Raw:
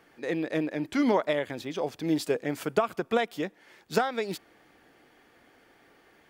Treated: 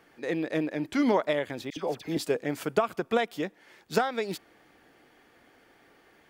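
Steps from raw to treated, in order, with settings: 1.7–2.17 dispersion lows, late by 65 ms, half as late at 1400 Hz

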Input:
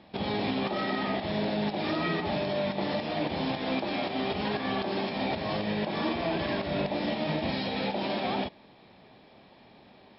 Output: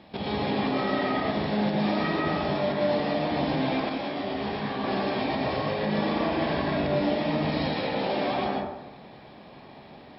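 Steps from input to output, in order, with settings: in parallel at +2 dB: compressor, threshold -38 dBFS, peak gain reduction 12 dB; on the sum: reverb RT60 1.0 s, pre-delay 0.102 s, DRR -2.5 dB; 3.89–4.84 detuned doubles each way 46 cents; gain -4 dB

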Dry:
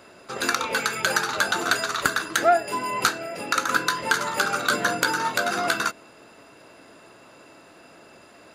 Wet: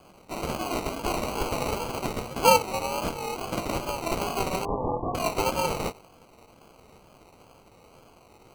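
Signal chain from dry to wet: CVSD 16 kbps; dynamic EQ 620 Hz, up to +7 dB, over -43 dBFS, Q 1.3; ring modulator 190 Hz; sample-and-hold 25×; wow and flutter 75 cents; 4.65–5.15 brick-wall FIR low-pass 1200 Hz; gain -1 dB

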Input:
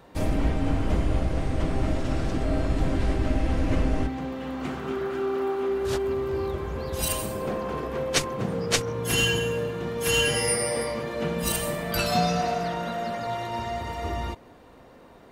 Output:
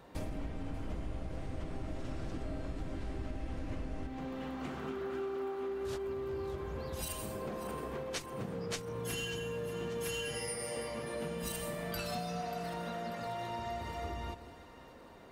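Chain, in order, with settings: compressor 6:1, threshold -32 dBFS, peak gain reduction 14 dB; split-band echo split 980 Hz, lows 0.178 s, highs 0.588 s, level -14 dB; gain -4.5 dB

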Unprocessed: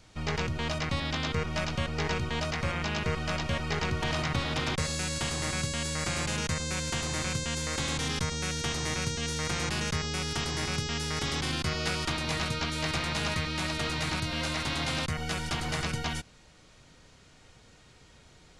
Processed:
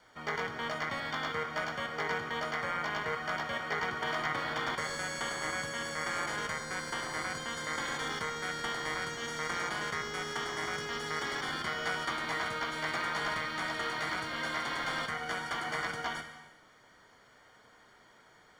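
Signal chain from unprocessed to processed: HPF 140 Hz 6 dB/oct; tilt +4.5 dB/oct; companded quantiser 4-bit; polynomial smoothing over 41 samples; non-linear reverb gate 0.42 s falling, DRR 5.5 dB

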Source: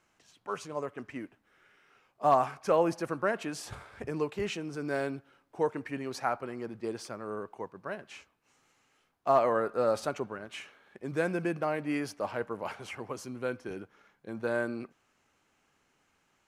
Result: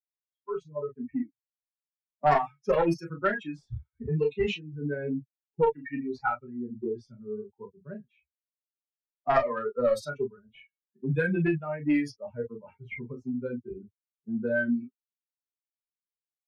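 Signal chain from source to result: per-bin expansion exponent 3; added harmonics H 2 -7 dB, 5 -25 dB, 8 -33 dB, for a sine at -16 dBFS; on a send at -1.5 dB: reverb, pre-delay 3 ms; on the sum: low-pass opened by the level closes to 390 Hz, open at -27 dBFS; three-band squash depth 70%; gain +7.5 dB

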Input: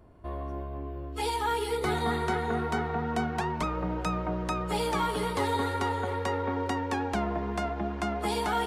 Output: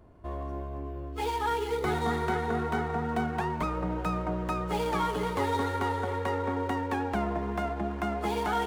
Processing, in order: median filter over 9 samples

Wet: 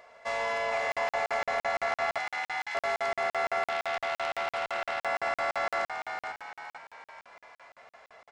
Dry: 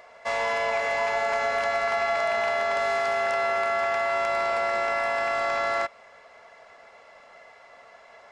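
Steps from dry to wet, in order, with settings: 2.18–2.75 steep high-pass 1700 Hz 48 dB/oct; frequency-shifting echo 0.457 s, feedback 46%, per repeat +78 Hz, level -6.5 dB; crackling interface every 0.17 s, samples 2048, zero, from 0.92; 3.69–5.05 core saturation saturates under 2200 Hz; gain -4.5 dB

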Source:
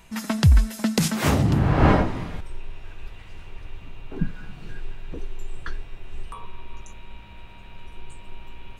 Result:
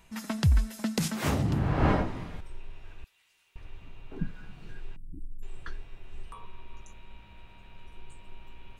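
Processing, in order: 3.04–3.56 differentiator; 4.96–5.43 Chebyshev band-stop 310–8400 Hz, order 5; gain -7.5 dB

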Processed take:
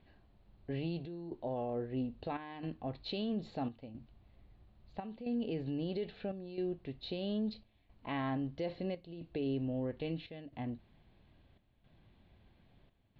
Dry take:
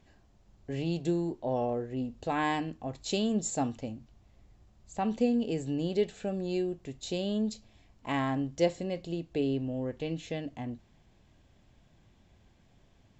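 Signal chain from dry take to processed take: Chebyshev low-pass 4300 Hz, order 5; limiter -27 dBFS, peak gain reduction 11.5 dB; chopper 0.76 Hz, depth 65%, duty 80%; gain -2 dB

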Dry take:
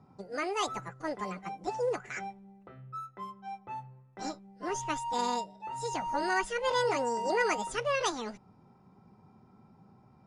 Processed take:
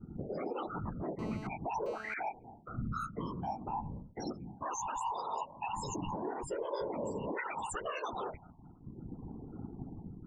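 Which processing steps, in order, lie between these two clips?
3.75–5.01 low shelf 220 Hz -6.5 dB; loudest bins only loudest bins 16; phaser stages 2, 0.34 Hz, lowest notch 190–2100 Hz; expander -60 dBFS; compressor 6:1, threshold -46 dBFS, peak gain reduction 17.5 dB; limiter -45 dBFS, peak gain reduction 9.5 dB; whisperiser; 1.19–2.14 GSM buzz -64 dBFS; gain +14 dB

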